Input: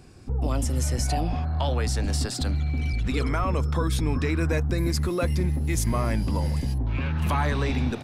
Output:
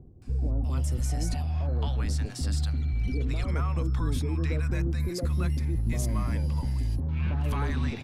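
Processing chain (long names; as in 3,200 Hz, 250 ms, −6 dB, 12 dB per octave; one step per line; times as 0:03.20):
low-shelf EQ 150 Hz +7.5 dB
reversed playback
upward compression, threshold −27 dBFS
reversed playback
multiband delay without the direct sound lows, highs 220 ms, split 680 Hz
level −7.5 dB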